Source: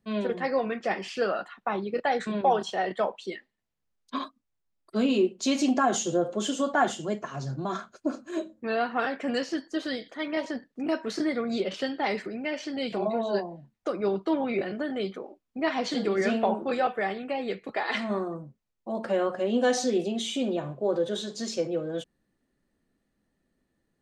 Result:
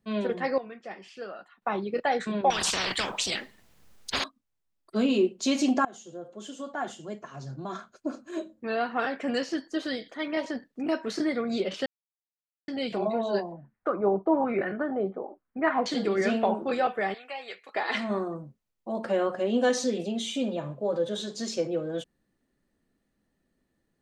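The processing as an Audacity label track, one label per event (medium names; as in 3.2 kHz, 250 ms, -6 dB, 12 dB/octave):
0.580000	1.620000	gain -12 dB
2.500000	4.240000	spectrum-flattening compressor 10:1
5.850000	9.280000	fade in, from -21.5 dB
11.860000	12.680000	mute
13.520000	15.860000	LFO low-pass sine 1.1 Hz 730–1700 Hz
17.140000	17.750000	high-pass 940 Hz
19.690000	21.200000	comb of notches 370 Hz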